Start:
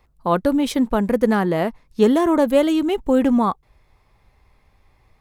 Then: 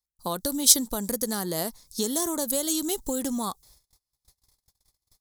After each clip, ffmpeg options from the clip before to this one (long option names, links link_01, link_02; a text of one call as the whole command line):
ffmpeg -i in.wav -af "acompressor=threshold=-21dB:ratio=6,agate=range=-32dB:threshold=-52dB:ratio=16:detection=peak,aexciter=amount=12.3:drive=8.6:freq=4000,volume=-6dB" out.wav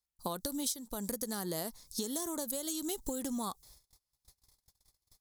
ffmpeg -i in.wav -af "acompressor=threshold=-31dB:ratio=16,volume=-1.5dB" out.wav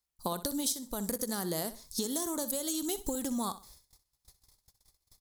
ffmpeg -i in.wav -af "aecho=1:1:63|126|189:0.2|0.0559|0.0156,volume=3dB" out.wav